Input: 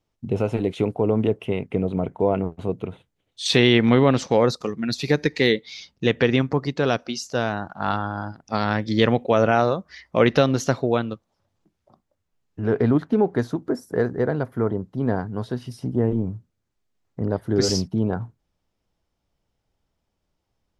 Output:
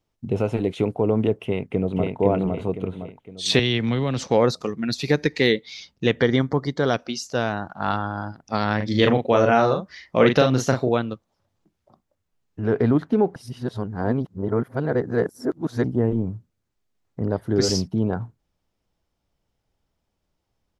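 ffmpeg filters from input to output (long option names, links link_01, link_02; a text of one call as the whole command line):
ffmpeg -i in.wav -filter_complex "[0:a]asplit=2[link_01][link_02];[link_02]afade=type=in:start_time=1.45:duration=0.01,afade=type=out:start_time=2.17:duration=0.01,aecho=0:1:510|1020|1530|2040|2550:0.749894|0.299958|0.119983|0.0479932|0.0191973[link_03];[link_01][link_03]amix=inputs=2:normalize=0,asettb=1/sr,asplit=3[link_04][link_05][link_06];[link_04]atrim=end=3.594[link_07];[link_05]atrim=start=3.59:end=4.28,asetpts=PTS-STARTPTS,afade=type=in:duration=0.004:curve=qsin,afade=type=out:start_time=0.686:duration=0.004:curve=qsin,acrossover=split=140|3000[link_08][link_09][link_10];[link_09]acompressor=threshold=-25dB:ratio=3:attack=3.2:release=140:knee=2.83:detection=peak[link_11];[link_08][link_11][link_10]amix=inputs=3:normalize=0[link_12];[link_06]atrim=start=4.276[link_13];[link_07][link_12]acrossfade=duration=0.004:curve1=hsin:curve2=qsin[link_14];[link_14][link_13]acrossfade=duration=0.004:curve1=qsin:curve2=hsin,asettb=1/sr,asplit=3[link_15][link_16][link_17];[link_15]atrim=end=6.204[link_18];[link_16]atrim=start=6.2:end=6.94,asetpts=PTS-STARTPTS,afade=type=in:duration=0.004:curve=qsin,afade=type=out:start_time=0.736:duration=0.004:curve=qsin,asuperstop=centerf=2600:order=4:qfactor=3.8[link_19];[link_17]atrim=start=6.936[link_20];[link_18][link_19]acrossfade=duration=0.004:curve1=hsin:curve2=qsin[link_21];[link_21][link_20]acrossfade=duration=0.004:curve1=qsin:curve2=hsin,asettb=1/sr,asplit=3[link_22][link_23][link_24];[link_22]atrim=end=8.764[link_25];[link_23]atrim=start=8.76:end=10.89,asetpts=PTS-STARTPTS,afade=type=in:duration=0.004:curve=qsin,afade=type=out:start_time=2.126:duration=0.004:curve=qsin,asplit=2[link_26][link_27];[link_27]adelay=39,volume=-5dB[link_28];[link_26][link_28]amix=inputs=2:normalize=0,atrim=end_sample=93933[link_29];[link_24]atrim=start=10.886[link_30];[link_25][link_29]acrossfade=duration=0.004:curve1=hsin:curve2=qsin[link_31];[link_31][link_30]acrossfade=duration=0.004:curve1=qsin:curve2=hsin,asplit=3[link_32][link_33][link_34];[link_32]atrim=end=13.362[link_35];[link_33]atrim=start=13.358:end=15.842,asetpts=PTS-STARTPTS,areverse[link_36];[link_34]atrim=start=15.838[link_37];[link_35][link_36]acrossfade=duration=0.004:curve1=hsin:curve2=hsin[link_38];[link_38][link_37]acrossfade=duration=0.004:curve1=hsin:curve2=hsin" out.wav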